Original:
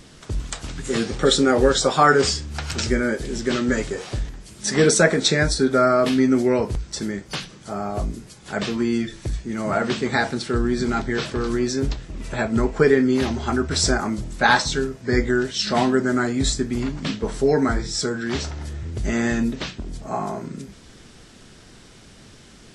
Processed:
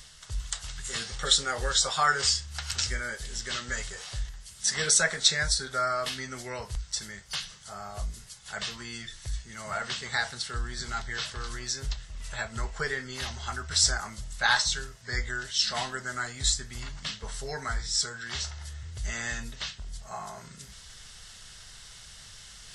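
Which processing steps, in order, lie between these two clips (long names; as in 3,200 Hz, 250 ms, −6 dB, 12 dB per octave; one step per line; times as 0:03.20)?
guitar amp tone stack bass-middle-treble 10-0-10
notch filter 2,400 Hz, Q 8.2
reversed playback
upward compression, threshold −40 dBFS
reversed playback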